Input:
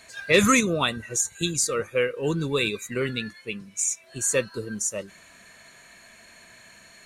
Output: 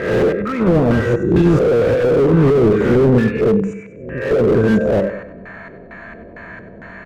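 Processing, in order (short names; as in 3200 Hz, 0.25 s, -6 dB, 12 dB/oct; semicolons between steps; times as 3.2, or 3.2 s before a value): spectral swells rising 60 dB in 0.71 s; tilt shelf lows +7 dB, about 900 Hz; negative-ratio compressor -21 dBFS, ratio -0.5; 3.73–4.31 ladder low-pass 2500 Hz, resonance 65%; resonator 63 Hz, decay 0.61 s, harmonics odd, mix 60%; LFO low-pass square 2.2 Hz 470–1600 Hz; feedback echo 96 ms, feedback 42%, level -12 dB; maximiser +18.5 dB; slew limiter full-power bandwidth 130 Hz; gain -1 dB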